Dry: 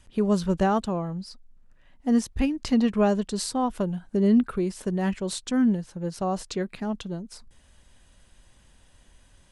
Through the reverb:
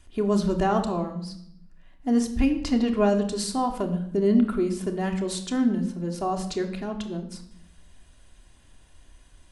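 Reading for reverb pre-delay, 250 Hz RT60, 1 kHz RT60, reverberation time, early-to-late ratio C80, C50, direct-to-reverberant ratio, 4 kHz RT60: 3 ms, 0.95 s, 0.65 s, 0.65 s, 12.5 dB, 9.5 dB, 3.5 dB, 0.65 s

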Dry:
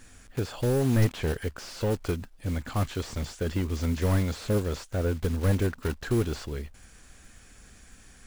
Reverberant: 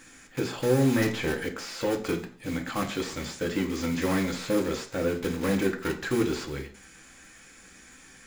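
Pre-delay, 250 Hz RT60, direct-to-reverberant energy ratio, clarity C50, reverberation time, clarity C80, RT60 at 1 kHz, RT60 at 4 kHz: 3 ms, 0.45 s, 3.0 dB, 12.0 dB, 0.50 s, 16.0 dB, 0.50 s, 0.45 s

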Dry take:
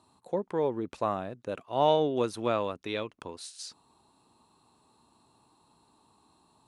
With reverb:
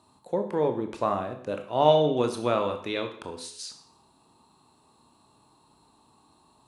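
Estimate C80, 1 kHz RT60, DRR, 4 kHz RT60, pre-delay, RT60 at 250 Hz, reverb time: 13.0 dB, 0.60 s, 5.5 dB, 0.60 s, 20 ms, 0.60 s, 0.60 s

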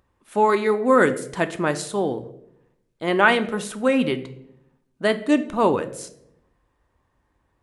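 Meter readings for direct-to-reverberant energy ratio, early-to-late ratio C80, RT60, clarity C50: 9.0 dB, 17.5 dB, 0.75 s, 15.0 dB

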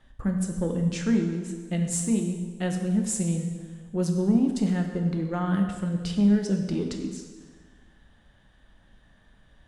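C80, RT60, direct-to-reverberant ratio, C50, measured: 7.0 dB, 1.5 s, 3.0 dB, 5.5 dB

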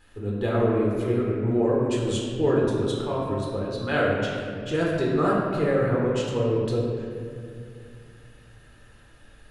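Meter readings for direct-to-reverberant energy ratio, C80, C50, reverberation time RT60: −5.0 dB, 1.0 dB, 0.0 dB, 2.3 s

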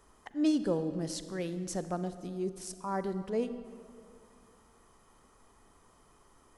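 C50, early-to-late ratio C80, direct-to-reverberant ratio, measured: 11.5 dB, 12.5 dB, 11.0 dB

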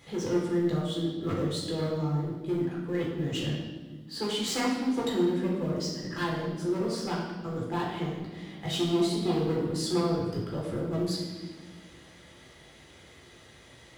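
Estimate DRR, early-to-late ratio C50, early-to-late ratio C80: −4.5 dB, 1.5 dB, 4.0 dB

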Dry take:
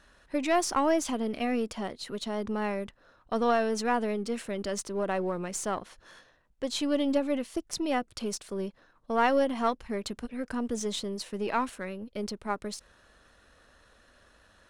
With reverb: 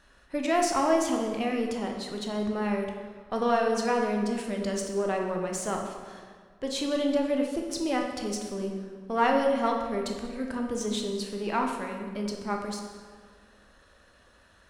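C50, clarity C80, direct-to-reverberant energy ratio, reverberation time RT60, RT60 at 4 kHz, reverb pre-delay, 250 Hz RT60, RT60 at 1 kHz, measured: 4.0 dB, 5.5 dB, 1.5 dB, 1.7 s, 1.2 s, 12 ms, 2.0 s, 1.7 s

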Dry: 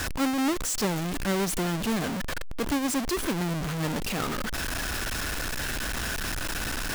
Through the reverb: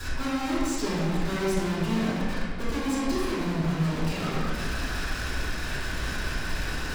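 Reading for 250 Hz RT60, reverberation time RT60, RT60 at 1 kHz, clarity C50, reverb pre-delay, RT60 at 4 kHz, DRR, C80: 2.1 s, 1.7 s, 1.7 s, −3.0 dB, 3 ms, 1.1 s, −12.0 dB, −0.5 dB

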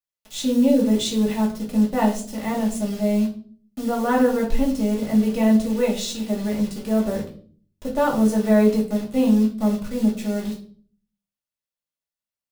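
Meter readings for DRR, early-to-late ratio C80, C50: −3.0 dB, 13.5 dB, 9.0 dB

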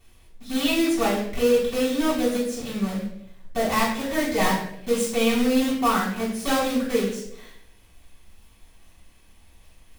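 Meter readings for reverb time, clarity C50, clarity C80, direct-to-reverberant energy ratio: 0.75 s, 4.0 dB, 7.5 dB, −9.0 dB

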